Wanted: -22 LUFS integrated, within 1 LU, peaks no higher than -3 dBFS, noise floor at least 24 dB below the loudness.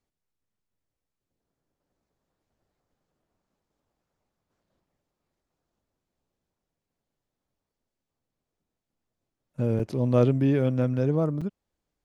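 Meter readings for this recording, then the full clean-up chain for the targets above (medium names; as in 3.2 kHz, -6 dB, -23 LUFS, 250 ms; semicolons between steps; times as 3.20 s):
dropouts 2; longest dropout 5.6 ms; loudness -25.0 LUFS; peak level -8.0 dBFS; loudness target -22.0 LUFS
-> interpolate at 9.79/11.41 s, 5.6 ms; trim +3 dB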